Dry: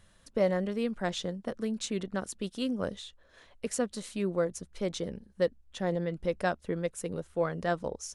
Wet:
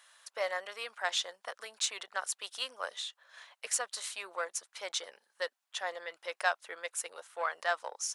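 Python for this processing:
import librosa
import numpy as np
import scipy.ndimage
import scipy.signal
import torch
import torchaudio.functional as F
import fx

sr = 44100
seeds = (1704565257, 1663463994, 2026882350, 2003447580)

p1 = 10.0 ** (-28.5 / 20.0) * np.tanh(x / 10.0 ** (-28.5 / 20.0))
p2 = x + F.gain(torch.from_numpy(p1), -8.5).numpy()
p3 = scipy.signal.sosfilt(scipy.signal.butter(4, 810.0, 'highpass', fs=sr, output='sos'), p2)
y = F.gain(torch.from_numpy(p3), 3.0).numpy()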